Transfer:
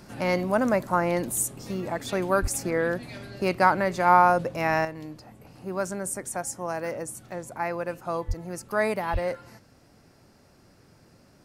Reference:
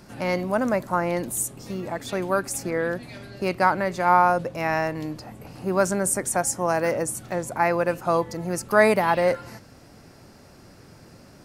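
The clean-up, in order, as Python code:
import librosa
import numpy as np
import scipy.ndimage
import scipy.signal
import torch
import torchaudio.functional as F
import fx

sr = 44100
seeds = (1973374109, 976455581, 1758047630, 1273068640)

y = fx.highpass(x, sr, hz=140.0, slope=24, at=(2.41, 2.53), fade=0.02)
y = fx.highpass(y, sr, hz=140.0, slope=24, at=(8.27, 8.39), fade=0.02)
y = fx.highpass(y, sr, hz=140.0, slope=24, at=(9.12, 9.24), fade=0.02)
y = fx.gain(y, sr, db=fx.steps((0.0, 0.0), (4.85, 8.0)))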